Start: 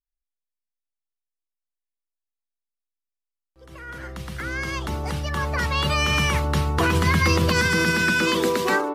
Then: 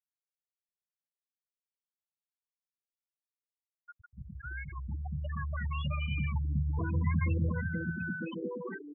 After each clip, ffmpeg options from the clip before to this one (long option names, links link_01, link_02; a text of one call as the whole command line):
ffmpeg -i in.wav -filter_complex "[0:a]acrossover=split=220[link_01][link_02];[link_02]acompressor=threshold=-29dB:ratio=4[link_03];[link_01][link_03]amix=inputs=2:normalize=0,afftfilt=real='re*gte(hypot(re,im),0.158)':imag='im*gte(hypot(re,im),0.158)':win_size=1024:overlap=0.75,volume=-7dB" out.wav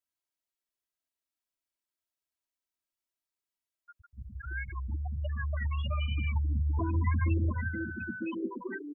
ffmpeg -i in.wav -af "aecho=1:1:3.1:0.95" out.wav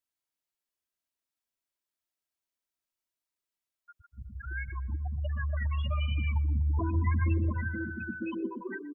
ffmpeg -i in.wav -filter_complex "[0:a]asplit=2[link_01][link_02];[link_02]adelay=122,lowpass=frequency=2100:poles=1,volume=-18dB,asplit=2[link_03][link_04];[link_04]adelay=122,lowpass=frequency=2100:poles=1,volume=0.53,asplit=2[link_05][link_06];[link_06]adelay=122,lowpass=frequency=2100:poles=1,volume=0.53,asplit=2[link_07][link_08];[link_08]adelay=122,lowpass=frequency=2100:poles=1,volume=0.53[link_09];[link_01][link_03][link_05][link_07][link_09]amix=inputs=5:normalize=0" out.wav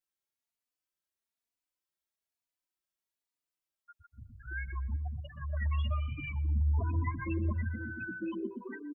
ffmpeg -i in.wav -filter_complex "[0:a]asplit=2[link_01][link_02];[link_02]adelay=3.4,afreqshift=1.1[link_03];[link_01][link_03]amix=inputs=2:normalize=1" out.wav